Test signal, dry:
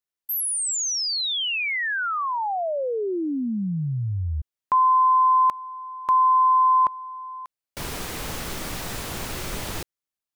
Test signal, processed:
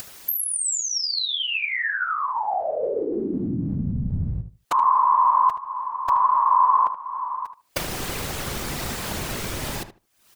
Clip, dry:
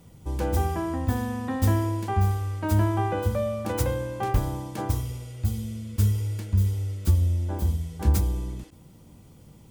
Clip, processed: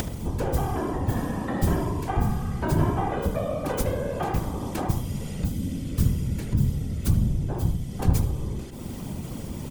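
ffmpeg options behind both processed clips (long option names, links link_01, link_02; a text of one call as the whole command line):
ffmpeg -i in.wav -filter_complex "[0:a]acompressor=mode=upward:threshold=-23dB:ratio=4:attack=18:release=366:knee=2.83:detection=peak,aeval=exprs='0.596*(abs(mod(val(0)/0.596+3,4)-2)-1)':channel_layout=same,afftfilt=real='hypot(re,im)*cos(2*PI*random(0))':imag='hypot(re,im)*sin(2*PI*random(1))':win_size=512:overlap=0.75,asplit=2[link_01][link_02];[link_02]adelay=76,lowpass=frequency=2100:poles=1,volume=-10dB,asplit=2[link_03][link_04];[link_04]adelay=76,lowpass=frequency=2100:poles=1,volume=0.18,asplit=2[link_05][link_06];[link_06]adelay=76,lowpass=frequency=2100:poles=1,volume=0.18[link_07];[link_03][link_05][link_07]amix=inputs=3:normalize=0[link_08];[link_01][link_08]amix=inputs=2:normalize=0,volume=5dB" out.wav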